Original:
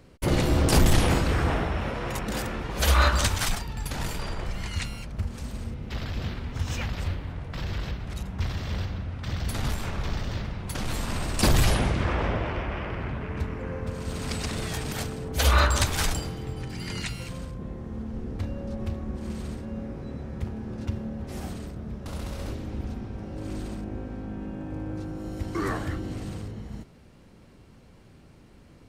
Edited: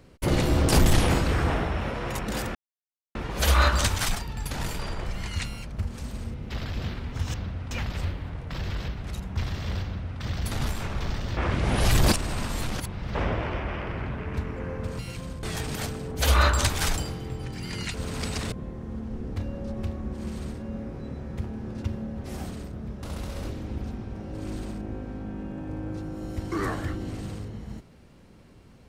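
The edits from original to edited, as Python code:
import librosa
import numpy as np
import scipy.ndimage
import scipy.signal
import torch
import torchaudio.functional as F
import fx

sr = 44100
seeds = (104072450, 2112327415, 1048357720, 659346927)

y = fx.edit(x, sr, fx.insert_silence(at_s=2.55, length_s=0.6),
    fx.duplicate(start_s=8.86, length_s=0.37, to_s=6.74),
    fx.reverse_span(start_s=10.4, length_s=1.78),
    fx.swap(start_s=14.02, length_s=0.58, other_s=17.11, other_length_s=0.44), tone=tone)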